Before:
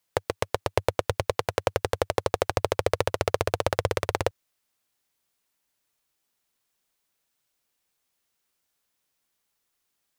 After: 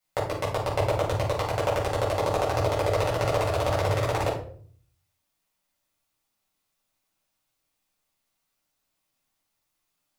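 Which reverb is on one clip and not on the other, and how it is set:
rectangular room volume 510 cubic metres, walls furnished, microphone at 6.9 metres
level −9.5 dB

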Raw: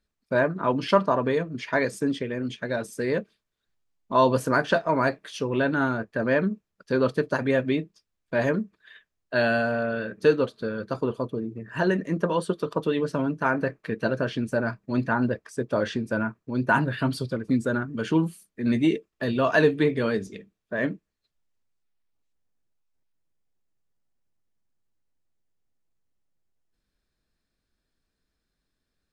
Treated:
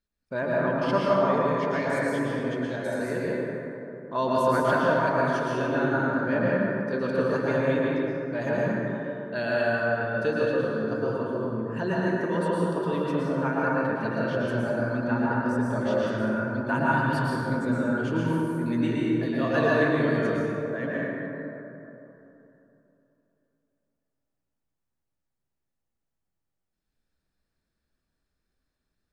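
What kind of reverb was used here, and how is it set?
dense smooth reverb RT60 3.2 s, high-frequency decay 0.35×, pre-delay 100 ms, DRR −6.5 dB
level −8 dB

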